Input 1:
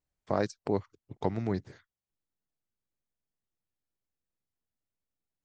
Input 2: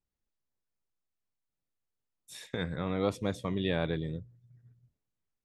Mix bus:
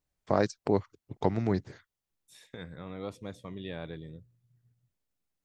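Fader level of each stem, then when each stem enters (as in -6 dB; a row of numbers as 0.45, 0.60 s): +3.0, -9.0 dB; 0.00, 0.00 s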